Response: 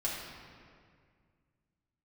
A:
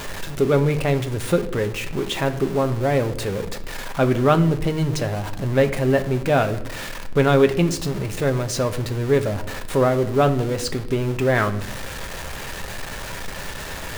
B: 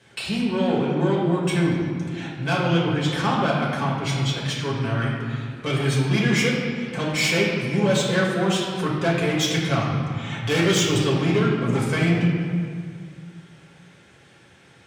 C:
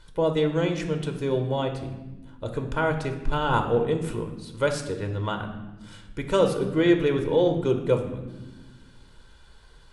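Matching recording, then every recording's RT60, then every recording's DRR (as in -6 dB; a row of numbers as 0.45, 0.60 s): B; not exponential, 2.1 s, 1.2 s; 7.0, -5.5, 4.5 dB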